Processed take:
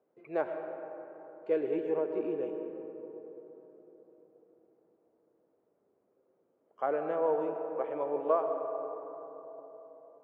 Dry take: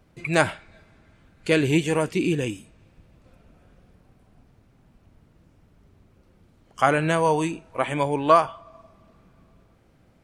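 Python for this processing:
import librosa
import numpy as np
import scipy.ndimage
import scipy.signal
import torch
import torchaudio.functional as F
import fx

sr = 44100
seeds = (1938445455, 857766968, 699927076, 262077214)

y = fx.ladder_bandpass(x, sr, hz=530.0, resonance_pct=45)
y = fx.rev_freeverb(y, sr, rt60_s=4.1, hf_ratio=0.3, predelay_ms=65, drr_db=5.5)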